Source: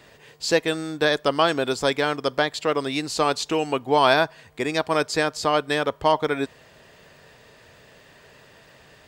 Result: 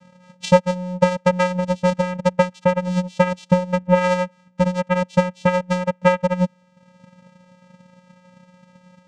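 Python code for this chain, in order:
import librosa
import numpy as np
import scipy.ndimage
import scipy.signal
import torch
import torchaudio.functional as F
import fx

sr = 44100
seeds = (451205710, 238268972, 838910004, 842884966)

y = fx.vocoder(x, sr, bands=4, carrier='square', carrier_hz=181.0)
y = fx.transient(y, sr, attack_db=10, sustain_db=-6)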